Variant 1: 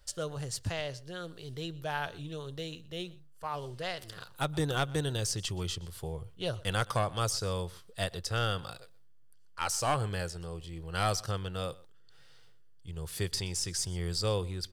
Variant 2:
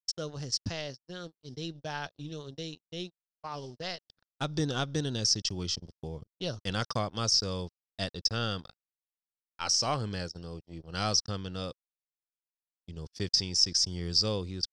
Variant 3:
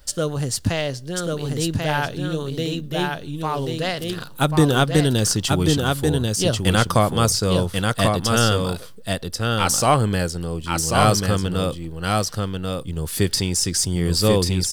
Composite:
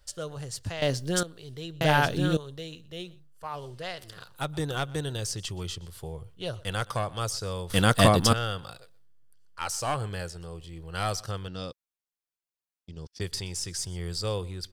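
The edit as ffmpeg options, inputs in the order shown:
-filter_complex "[2:a]asplit=3[a][b][c];[0:a]asplit=5[d][e][f][g][h];[d]atrim=end=0.822[i];[a]atrim=start=0.818:end=1.232[j];[e]atrim=start=1.228:end=1.812[k];[b]atrim=start=1.808:end=2.372[l];[f]atrim=start=2.368:end=7.702[m];[c]atrim=start=7.698:end=8.332[n];[g]atrim=start=8.328:end=11.482[o];[1:a]atrim=start=11.478:end=13.212[p];[h]atrim=start=13.208[q];[i][j]acrossfade=d=0.004:c1=hsin:c2=hsin[r];[r][k]acrossfade=d=0.004:c1=hsin:c2=hsin[s];[s][l]acrossfade=d=0.004:c1=hsin:c2=hsin[t];[t][m]acrossfade=d=0.004:c1=hsin:c2=hsin[u];[u][n]acrossfade=d=0.004:c1=hsin:c2=hsin[v];[v][o]acrossfade=d=0.004:c1=hsin:c2=hsin[w];[w][p]acrossfade=d=0.004:c1=hsin:c2=hsin[x];[x][q]acrossfade=d=0.004:c1=hsin:c2=hsin"

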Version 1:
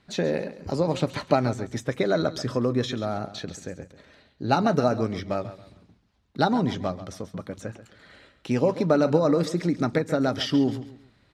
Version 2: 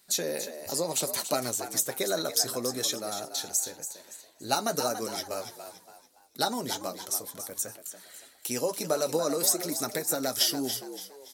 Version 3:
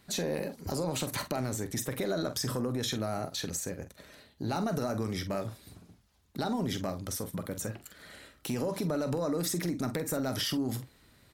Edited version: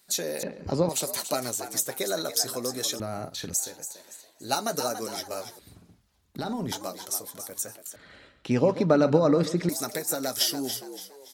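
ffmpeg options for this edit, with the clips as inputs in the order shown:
-filter_complex "[0:a]asplit=2[a][b];[2:a]asplit=2[c][d];[1:a]asplit=5[e][f][g][h][i];[e]atrim=end=0.432[j];[a]atrim=start=0.428:end=0.892[k];[f]atrim=start=0.888:end=3.002[l];[c]atrim=start=2.998:end=3.542[m];[g]atrim=start=3.538:end=5.592[n];[d]atrim=start=5.588:end=6.722[o];[h]atrim=start=6.718:end=7.962[p];[b]atrim=start=7.958:end=9.692[q];[i]atrim=start=9.688[r];[j][k]acrossfade=d=0.004:c1=hsin:c2=hsin[s];[s][l]acrossfade=d=0.004:c1=hsin:c2=hsin[t];[t][m]acrossfade=d=0.004:c1=hsin:c2=hsin[u];[u][n]acrossfade=d=0.004:c1=hsin:c2=hsin[v];[v][o]acrossfade=d=0.004:c1=hsin:c2=hsin[w];[w][p]acrossfade=d=0.004:c1=hsin:c2=hsin[x];[x][q]acrossfade=d=0.004:c1=hsin:c2=hsin[y];[y][r]acrossfade=d=0.004:c1=hsin:c2=hsin"

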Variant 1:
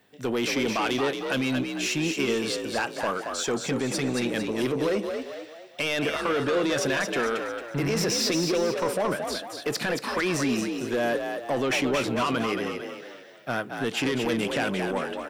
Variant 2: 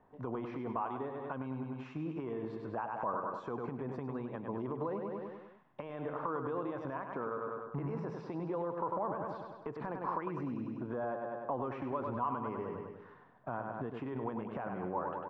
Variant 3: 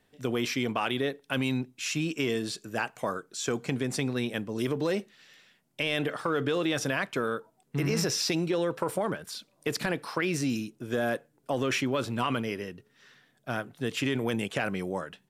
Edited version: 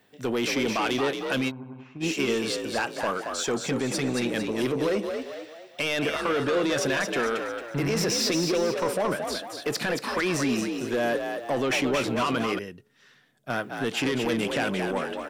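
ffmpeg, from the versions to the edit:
-filter_complex "[0:a]asplit=3[a][b][c];[a]atrim=end=1.52[d];[1:a]atrim=start=1.48:end=2.04[e];[b]atrim=start=2:end=12.592[f];[2:a]atrim=start=12.588:end=13.502[g];[c]atrim=start=13.498[h];[d][e]acrossfade=d=0.04:c1=tri:c2=tri[i];[i][f]acrossfade=d=0.04:c1=tri:c2=tri[j];[j][g]acrossfade=d=0.004:c1=hsin:c2=hsin[k];[k][h]acrossfade=d=0.004:c1=hsin:c2=hsin"

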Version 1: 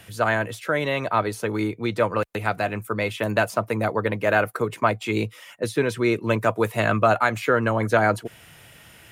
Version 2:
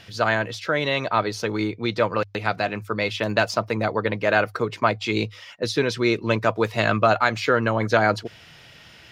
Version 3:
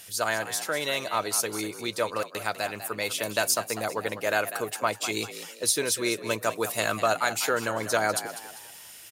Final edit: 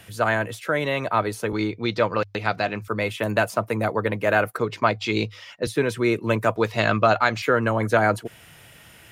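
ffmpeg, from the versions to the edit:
-filter_complex "[1:a]asplit=3[a][b][c];[0:a]asplit=4[d][e][f][g];[d]atrim=end=1.532[h];[a]atrim=start=1.528:end=2.882[i];[e]atrim=start=2.878:end=4.582[j];[b]atrim=start=4.578:end=5.672[k];[f]atrim=start=5.668:end=6.562[l];[c]atrim=start=6.558:end=7.422[m];[g]atrim=start=7.418[n];[h][i]acrossfade=d=0.004:c1=hsin:c2=hsin[o];[o][j]acrossfade=d=0.004:c1=hsin:c2=hsin[p];[p][k]acrossfade=d=0.004:c1=hsin:c2=hsin[q];[q][l]acrossfade=d=0.004:c1=hsin:c2=hsin[r];[r][m]acrossfade=d=0.004:c1=hsin:c2=hsin[s];[s][n]acrossfade=d=0.004:c1=hsin:c2=hsin"

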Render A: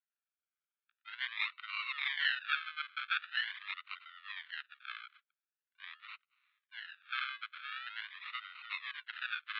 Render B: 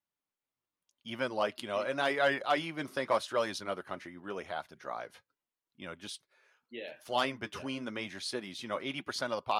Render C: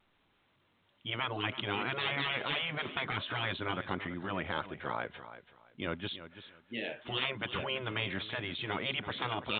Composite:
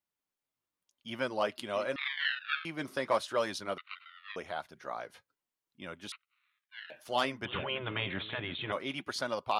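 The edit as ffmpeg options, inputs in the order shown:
-filter_complex "[0:a]asplit=3[a][b][c];[1:a]asplit=5[d][e][f][g][h];[d]atrim=end=1.962[i];[a]atrim=start=1.958:end=2.652[j];[e]atrim=start=2.648:end=3.782[k];[b]atrim=start=3.778:end=4.362[l];[f]atrim=start=4.358:end=6.122[m];[c]atrim=start=6.118:end=6.902[n];[g]atrim=start=6.898:end=7.452[o];[2:a]atrim=start=7.448:end=8.722[p];[h]atrim=start=8.718[q];[i][j]acrossfade=d=0.004:c1=hsin:c2=hsin[r];[r][k]acrossfade=d=0.004:c1=hsin:c2=hsin[s];[s][l]acrossfade=d=0.004:c1=hsin:c2=hsin[t];[t][m]acrossfade=d=0.004:c1=hsin:c2=hsin[u];[u][n]acrossfade=d=0.004:c1=hsin:c2=hsin[v];[v][o]acrossfade=d=0.004:c1=hsin:c2=hsin[w];[w][p]acrossfade=d=0.004:c1=hsin:c2=hsin[x];[x][q]acrossfade=d=0.004:c1=hsin:c2=hsin"

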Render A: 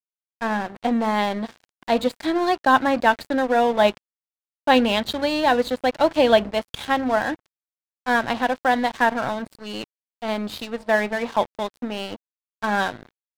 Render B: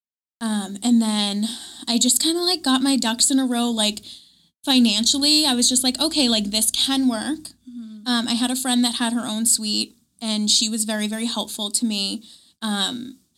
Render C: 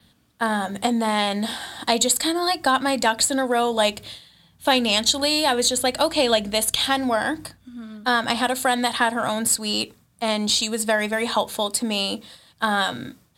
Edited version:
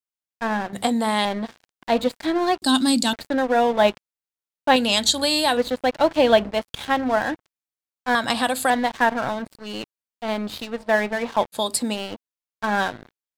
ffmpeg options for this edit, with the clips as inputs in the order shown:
-filter_complex "[2:a]asplit=4[a][b][c][d];[0:a]asplit=6[e][f][g][h][i][j];[e]atrim=end=0.732[k];[a]atrim=start=0.728:end=1.252[l];[f]atrim=start=1.248:end=2.622[m];[1:a]atrim=start=2.618:end=3.132[n];[g]atrim=start=3.128:end=4.762[o];[b]atrim=start=4.758:end=5.572[p];[h]atrim=start=5.568:end=8.152[q];[c]atrim=start=8.148:end=8.702[r];[i]atrim=start=8.698:end=11.58[s];[d]atrim=start=11.52:end=11.98[t];[j]atrim=start=11.92[u];[k][l]acrossfade=d=0.004:c1=hsin:c2=hsin[v];[v][m]acrossfade=d=0.004:c1=hsin:c2=hsin[w];[w][n]acrossfade=d=0.004:c1=hsin:c2=hsin[x];[x][o]acrossfade=d=0.004:c1=hsin:c2=hsin[y];[y][p]acrossfade=d=0.004:c1=hsin:c2=hsin[z];[z][q]acrossfade=d=0.004:c1=hsin:c2=hsin[aa];[aa][r]acrossfade=d=0.004:c1=hsin:c2=hsin[ab];[ab][s]acrossfade=d=0.004:c1=hsin:c2=hsin[ac];[ac][t]acrossfade=d=0.06:c1=tri:c2=tri[ad];[ad][u]acrossfade=d=0.06:c1=tri:c2=tri"

